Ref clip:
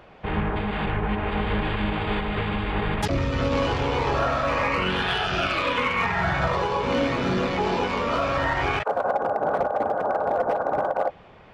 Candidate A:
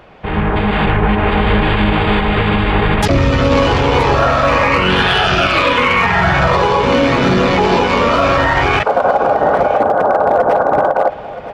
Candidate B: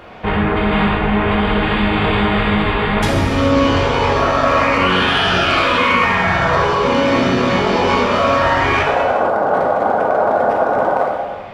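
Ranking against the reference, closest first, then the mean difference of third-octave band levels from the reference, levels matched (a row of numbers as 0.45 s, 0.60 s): A, B; 1.0 dB, 2.5 dB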